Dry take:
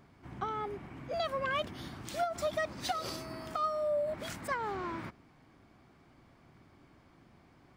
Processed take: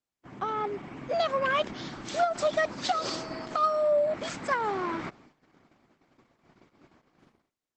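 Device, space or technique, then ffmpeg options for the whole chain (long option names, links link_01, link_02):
video call: -af "highpass=170,dynaudnorm=framelen=130:gausssize=7:maxgain=5dB,agate=range=-38dB:threshold=-56dB:ratio=16:detection=peak,volume=2.5dB" -ar 48000 -c:a libopus -b:a 12k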